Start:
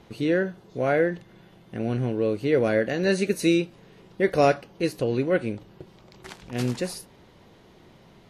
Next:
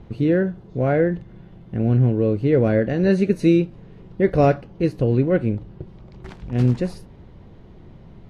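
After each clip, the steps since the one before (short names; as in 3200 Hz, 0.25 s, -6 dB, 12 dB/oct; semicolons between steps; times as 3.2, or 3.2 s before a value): RIAA curve playback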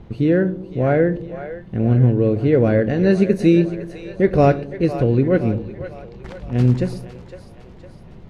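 split-band echo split 450 Hz, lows 0.111 s, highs 0.508 s, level -12 dB; gain +2 dB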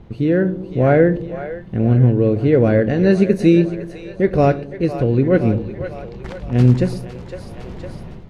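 AGC gain up to 11.5 dB; gain -1 dB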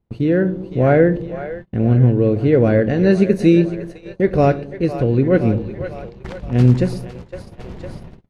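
gate -31 dBFS, range -30 dB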